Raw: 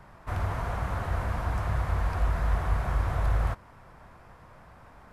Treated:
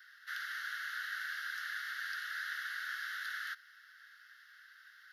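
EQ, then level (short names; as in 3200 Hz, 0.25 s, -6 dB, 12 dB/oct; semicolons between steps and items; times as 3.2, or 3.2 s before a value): steep high-pass 1500 Hz 72 dB/oct; fixed phaser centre 2400 Hz, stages 6; +7.0 dB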